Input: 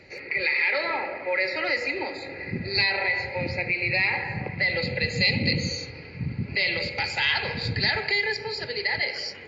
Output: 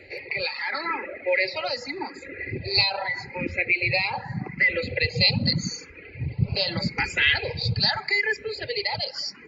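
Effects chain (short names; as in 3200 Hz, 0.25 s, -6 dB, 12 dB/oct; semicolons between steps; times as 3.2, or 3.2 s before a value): reverb removal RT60 1.1 s; 6.42–7.36 low shelf 500 Hz +10.5 dB; endless phaser +0.82 Hz; gain +5 dB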